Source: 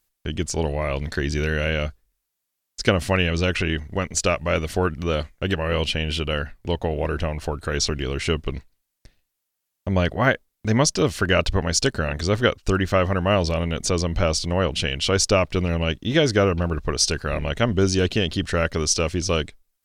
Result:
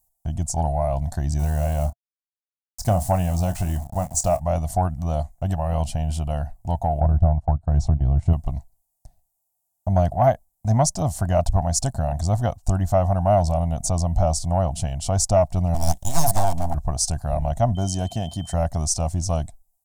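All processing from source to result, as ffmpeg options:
-filter_complex "[0:a]asettb=1/sr,asplit=3[s0][s1][s2];[s0]atrim=end=1.394[s3];[s1]atrim=start=1.39:end=4.4,asetpts=PTS-STARTPTS,afade=t=in:d=0.004:c=qsin,afade=t=out:st=3.006:d=0.004:c=qsin,aeval=exprs='val(0)*gte(abs(val(0)),0.0224)':c=same,asplit=2[s4][s5];[s5]adelay=28,volume=0.251[s6];[s4][s6]amix=inputs=2:normalize=0,atrim=end_sample=132741[s7];[s2]atrim=start=4.396[s8];[s3][s7]acrossfade=d=0.004:c1=hsin:c2=qsin[s9];[s9][s8]acrossfade=d=0.004:c1=qsin:c2=hsin,asettb=1/sr,asplit=3[s10][s11][s12];[s10]atrim=end=7.004[s13];[s11]atrim=start=7:end=8.33,asetpts=PTS-STARTPTS,afade=t=in:d=0.004:c=qsin,afade=t=out:st=1.326:d=0.004:c=qsin,agate=range=0.112:threshold=0.0355:ratio=16:release=100:detection=peak,lowpass=f=1100:p=1,equalizer=f=89:w=0.41:g=8[s14];[s12]atrim=start=8.326[s15];[s13][s14]acrossfade=d=0.004:c1=hsin:c2=qsin[s16];[s16][s15]acrossfade=d=0.004:c1=qsin:c2=hsin,asettb=1/sr,asplit=3[s17][s18][s19];[s17]atrim=end=15.744[s20];[s18]atrim=start=15.74:end=16.75,asetpts=PTS-STARTPTS,afade=t=in:d=0.004:c=qsin,afade=t=out:st=1.006:d=0.004:c=qsin,highshelf=f=1500:t=q:w=1.5:g=8.5,aeval=exprs='abs(val(0))':c=same[s21];[s19]atrim=start=16.746[s22];[s20][s21]acrossfade=d=0.004:c1=hsin:c2=qsin[s23];[s23][s22]acrossfade=d=0.004:c1=qsin:c2=hsin,asettb=1/sr,asplit=3[s24][s25][s26];[s24]atrim=end=17.754[s27];[s25]atrim=start=17.75:end=18.54,asetpts=PTS-STARTPTS,afade=t=in:d=0.004:c=qsin,afade=t=out:st=0.786:d=0.004:c=qsin,highpass=f=150:p=1,aeval=exprs='val(0)+0.0562*sin(2*PI*3100*n/s)':c=same[s28];[s26]atrim=start=18.536[s29];[s27][s28]acrossfade=d=0.004:c1=hsin:c2=qsin[s30];[s30][s29]acrossfade=d=0.004:c1=qsin:c2=hsin,firequalizer=gain_entry='entry(120,0);entry(440,-25);entry(690,8);entry(1300,-19);entry(2500,-26);entry(7500,0)':delay=0.05:min_phase=1,acontrast=81,volume=0.75"

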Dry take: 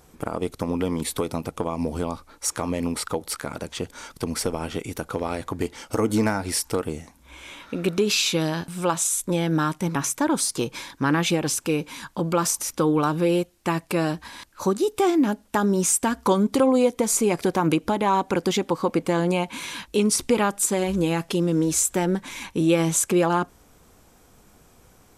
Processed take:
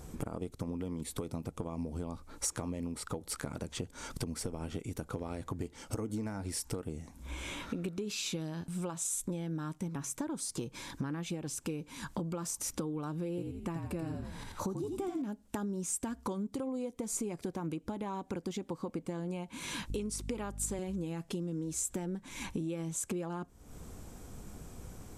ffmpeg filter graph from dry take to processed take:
-filter_complex "[0:a]asettb=1/sr,asplit=3[s0][s1][s2];[s0]atrim=end=13.294[s3];[s1]atrim=start=13.29:end=15.22,asetpts=PTS-STARTPTS,afade=t=in:d=0.004:c=qsin,afade=t=out:st=1.926:d=0.004:c=qsin,equalizer=f=5200:t=o:w=2.7:g=-4.5,asplit=6[s4][s5][s6][s7][s8][s9];[s5]adelay=84,afreqshift=-45,volume=0.562[s10];[s6]adelay=168,afreqshift=-90,volume=0.224[s11];[s7]adelay=252,afreqshift=-135,volume=0.0902[s12];[s8]adelay=336,afreqshift=-180,volume=0.0359[s13];[s9]adelay=420,afreqshift=-225,volume=0.0145[s14];[s4][s10][s11][s12][s13][s14]amix=inputs=6:normalize=0,atrim=end_sample=85113[s15];[s2]atrim=start=15.216[s16];[s3][s15]acrossfade=d=0.004:c1=hsin:c2=qsin[s17];[s17][s16]acrossfade=d=0.004:c1=qsin:c2=hsin,asettb=1/sr,asplit=3[s18][s19][s20];[s18]atrim=end=19.904[s21];[s19]atrim=start=19.9:end=20.79,asetpts=PTS-STARTPTS,afade=t=in:d=0.004:c=qsin,afade=t=out:st=0.886:d=0.004:c=qsin,highpass=210,aeval=exprs='val(0)+0.0158*(sin(2*PI*50*n/s)+sin(2*PI*2*50*n/s)/2+sin(2*PI*3*50*n/s)/3+sin(2*PI*4*50*n/s)/4+sin(2*PI*5*50*n/s)/5)':c=same[s22];[s20]atrim=start=20.786[s23];[s21][s22]acrossfade=d=0.004:c1=hsin:c2=qsin[s24];[s24][s23]acrossfade=d=0.004:c1=qsin:c2=hsin,lowshelf=f=380:g=11.5,acompressor=threshold=0.02:ratio=8,equalizer=f=7700:w=1.5:g=5,volume=0.841"

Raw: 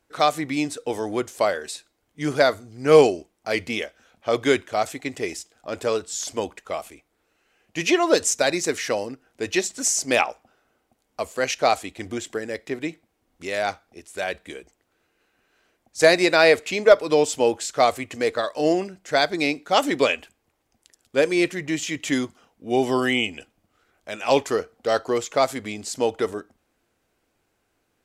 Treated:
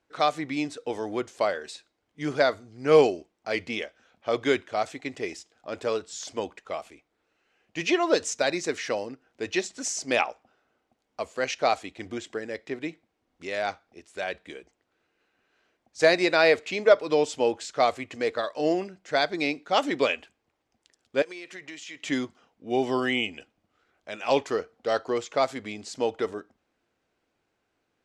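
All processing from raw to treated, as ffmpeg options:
-filter_complex "[0:a]asettb=1/sr,asplit=3[s0][s1][s2];[s0]atrim=end=21.224[s3];[s1]atrim=start=21.22:end=22.03,asetpts=PTS-STARTPTS,afade=t=in:d=0.004:c=qsin,afade=t=out:st=0.806:d=0.004:c=qsin,highpass=f=790:p=1,acompressor=threshold=0.0282:ratio=16:attack=3.2:release=140:knee=1:detection=peak[s4];[s2]atrim=start=22.026[s5];[s3][s4]acrossfade=d=0.004:c1=hsin:c2=qsin[s6];[s6][s5]acrossfade=d=0.004:c1=qsin:c2=hsin,lowpass=5700,lowshelf=f=71:g=-9,volume=0.631"

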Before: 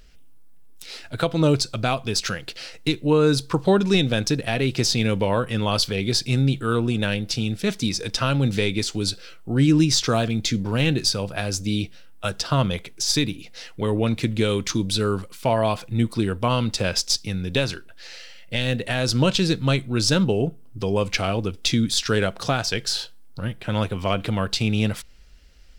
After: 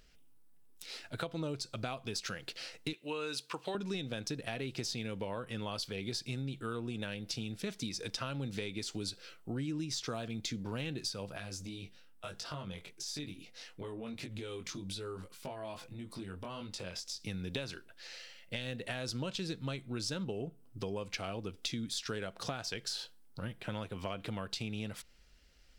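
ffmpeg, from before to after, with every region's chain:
-filter_complex "[0:a]asettb=1/sr,asplit=3[s0][s1][s2];[s0]atrim=end=2.934[s3];[s1]atrim=start=2.93:end=3.75,asetpts=PTS-STARTPTS,afade=t=in:d=0.004:c=qsin,afade=t=out:st=0.816:d=0.004:c=qsin,highpass=f=940:p=1,equalizer=f=2700:t=o:w=0.46:g=9[s4];[s2]atrim=start=3.746[s5];[s3][s4]acrossfade=d=0.004:c1=hsin:c2=qsin[s6];[s6][s5]acrossfade=d=0.004:c1=qsin:c2=hsin,asettb=1/sr,asplit=3[s7][s8][s9];[s7]atrim=end=11.374[s10];[s8]atrim=start=11.37:end=17.24,asetpts=PTS-STARTPTS,afade=t=in:d=0.004:c=qsin,afade=t=out:st=5.866:d=0.004:c=qsin,acompressor=threshold=0.0501:ratio=6:attack=3.2:release=140:knee=1:detection=peak,flanger=delay=20:depth=2.4:speed=1.7[s11];[s9]atrim=start=17.236[s12];[s10][s11]acrossfade=d=0.004:c1=hsin:c2=qsin[s13];[s13][s12]acrossfade=d=0.004:c1=qsin:c2=hsin,lowshelf=f=95:g=-7.5,acompressor=threshold=0.0447:ratio=6,volume=0.398"

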